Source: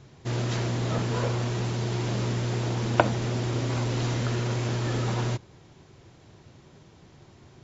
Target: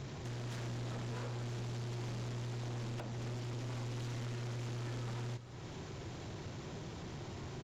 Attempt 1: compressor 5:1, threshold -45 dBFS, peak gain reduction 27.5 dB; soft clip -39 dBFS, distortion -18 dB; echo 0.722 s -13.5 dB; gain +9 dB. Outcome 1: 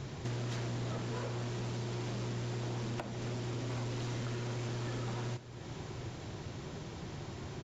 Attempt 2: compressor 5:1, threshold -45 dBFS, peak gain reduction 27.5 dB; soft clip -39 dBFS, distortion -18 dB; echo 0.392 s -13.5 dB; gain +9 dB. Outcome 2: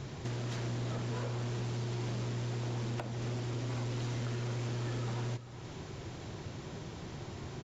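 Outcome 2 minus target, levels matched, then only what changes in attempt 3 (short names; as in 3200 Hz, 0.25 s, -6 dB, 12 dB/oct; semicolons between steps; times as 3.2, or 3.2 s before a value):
soft clip: distortion -9 dB
change: soft clip -48.5 dBFS, distortion -9 dB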